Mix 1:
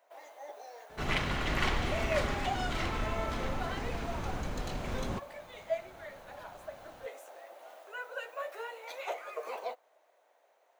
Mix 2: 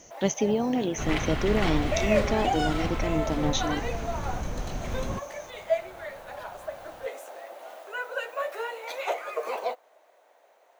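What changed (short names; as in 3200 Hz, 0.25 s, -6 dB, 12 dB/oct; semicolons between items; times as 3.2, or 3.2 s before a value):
speech: unmuted; first sound +7.5 dB; master: add low shelf 220 Hz +5.5 dB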